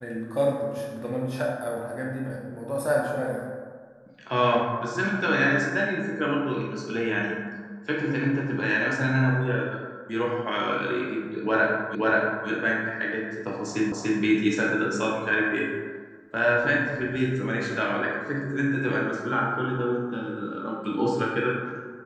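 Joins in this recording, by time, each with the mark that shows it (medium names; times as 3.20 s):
11.95 s: repeat of the last 0.53 s
13.92 s: repeat of the last 0.29 s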